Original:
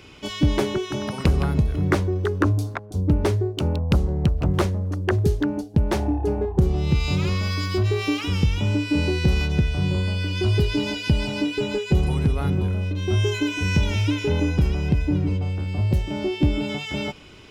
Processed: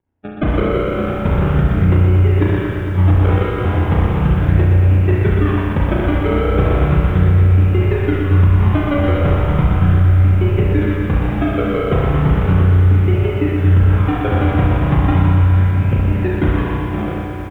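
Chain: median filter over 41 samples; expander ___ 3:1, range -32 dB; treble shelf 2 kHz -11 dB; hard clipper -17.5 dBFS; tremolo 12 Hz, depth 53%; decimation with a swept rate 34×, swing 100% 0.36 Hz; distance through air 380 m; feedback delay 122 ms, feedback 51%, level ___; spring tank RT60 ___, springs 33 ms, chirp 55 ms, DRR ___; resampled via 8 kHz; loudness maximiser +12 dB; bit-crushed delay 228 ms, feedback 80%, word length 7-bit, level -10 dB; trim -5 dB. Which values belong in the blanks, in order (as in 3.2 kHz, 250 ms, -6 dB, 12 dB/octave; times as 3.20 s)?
-29 dBFS, -5 dB, 1.1 s, -1.5 dB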